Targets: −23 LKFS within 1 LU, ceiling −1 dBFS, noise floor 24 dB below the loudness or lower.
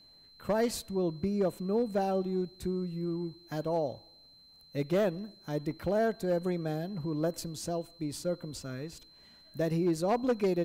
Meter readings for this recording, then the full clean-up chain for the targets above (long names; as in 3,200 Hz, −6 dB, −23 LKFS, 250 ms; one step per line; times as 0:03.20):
share of clipped samples 0.7%; peaks flattened at −22.0 dBFS; interfering tone 4,100 Hz; level of the tone −56 dBFS; integrated loudness −32.5 LKFS; sample peak −22.0 dBFS; target loudness −23.0 LKFS
→ clipped peaks rebuilt −22 dBFS
notch filter 4,100 Hz, Q 30
level +9.5 dB